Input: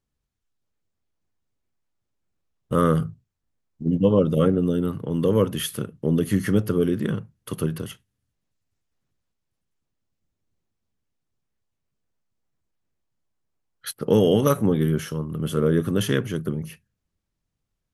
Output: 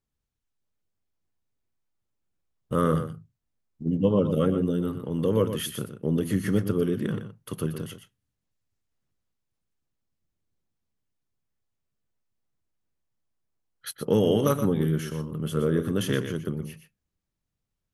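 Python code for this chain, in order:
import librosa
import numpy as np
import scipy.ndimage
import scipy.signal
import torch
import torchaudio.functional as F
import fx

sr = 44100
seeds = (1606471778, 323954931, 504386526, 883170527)

y = x + 10.0 ** (-9.5 / 20.0) * np.pad(x, (int(121 * sr / 1000.0), 0))[:len(x)]
y = y * 10.0 ** (-4.0 / 20.0)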